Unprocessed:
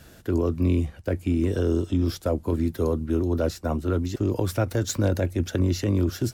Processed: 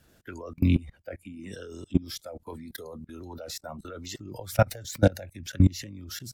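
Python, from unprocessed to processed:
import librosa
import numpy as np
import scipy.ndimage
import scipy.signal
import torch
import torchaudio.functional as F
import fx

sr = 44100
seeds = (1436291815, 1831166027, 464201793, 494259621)

y = fx.noise_reduce_blind(x, sr, reduce_db=15)
y = fx.level_steps(y, sr, step_db=22)
y = fx.hpss(y, sr, part='harmonic', gain_db=-6)
y = F.gain(torch.from_numpy(y), 7.5).numpy()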